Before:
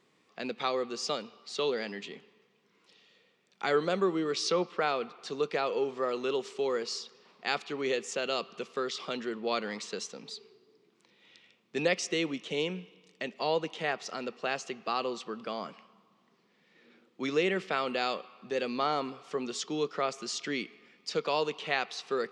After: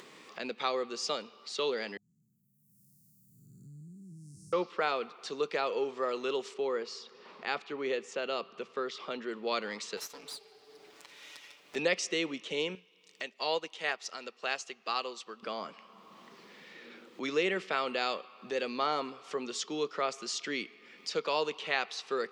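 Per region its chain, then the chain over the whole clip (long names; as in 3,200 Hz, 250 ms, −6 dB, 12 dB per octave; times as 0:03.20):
0:01.97–0:04.53: spectrum smeared in time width 364 ms + inverse Chebyshev band-stop filter 500–3,500 Hz, stop band 70 dB
0:06.54–0:09.29: low-pass filter 2,200 Hz 6 dB per octave + mains-hum notches 60/120/180 Hz
0:09.97–0:11.76: lower of the sound and its delayed copy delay 6.9 ms + low-shelf EQ 310 Hz −9 dB
0:12.75–0:15.43: spectral tilt +2 dB per octave + expander for the loud parts, over −48 dBFS
whole clip: high-pass filter 320 Hz 6 dB per octave; notch filter 720 Hz, Q 17; upward compression, threshold −39 dBFS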